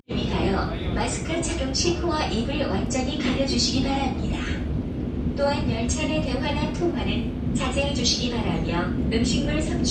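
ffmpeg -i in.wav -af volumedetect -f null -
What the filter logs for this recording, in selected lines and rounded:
mean_volume: -24.1 dB
max_volume: -9.3 dB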